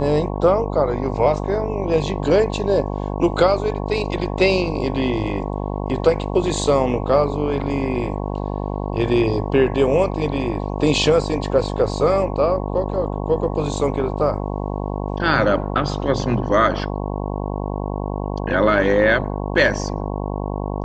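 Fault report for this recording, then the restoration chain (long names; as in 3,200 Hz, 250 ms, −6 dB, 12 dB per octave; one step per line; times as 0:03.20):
mains buzz 50 Hz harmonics 22 −25 dBFS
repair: hum removal 50 Hz, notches 22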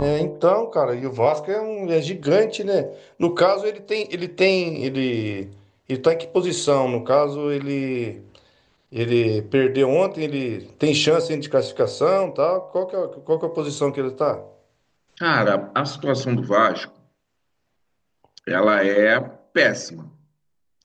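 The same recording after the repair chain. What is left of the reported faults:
none of them is left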